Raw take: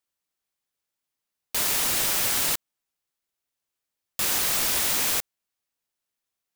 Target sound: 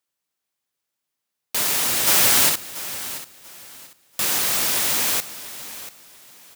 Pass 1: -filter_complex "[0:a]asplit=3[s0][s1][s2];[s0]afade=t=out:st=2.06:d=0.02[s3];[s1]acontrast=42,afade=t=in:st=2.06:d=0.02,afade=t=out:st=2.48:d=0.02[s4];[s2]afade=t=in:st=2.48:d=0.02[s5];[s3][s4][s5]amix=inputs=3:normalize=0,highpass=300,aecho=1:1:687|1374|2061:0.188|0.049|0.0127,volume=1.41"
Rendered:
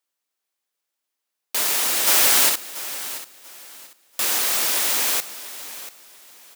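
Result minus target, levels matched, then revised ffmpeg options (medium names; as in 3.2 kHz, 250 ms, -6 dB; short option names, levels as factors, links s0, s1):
125 Hz band -12.5 dB
-filter_complex "[0:a]asplit=3[s0][s1][s2];[s0]afade=t=out:st=2.06:d=0.02[s3];[s1]acontrast=42,afade=t=in:st=2.06:d=0.02,afade=t=out:st=2.48:d=0.02[s4];[s2]afade=t=in:st=2.48:d=0.02[s5];[s3][s4][s5]amix=inputs=3:normalize=0,highpass=86,aecho=1:1:687|1374|2061:0.188|0.049|0.0127,volume=1.41"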